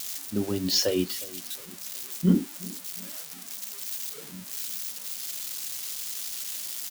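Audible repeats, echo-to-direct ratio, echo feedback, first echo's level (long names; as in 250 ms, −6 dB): 2, −20.0 dB, 40%, −20.5 dB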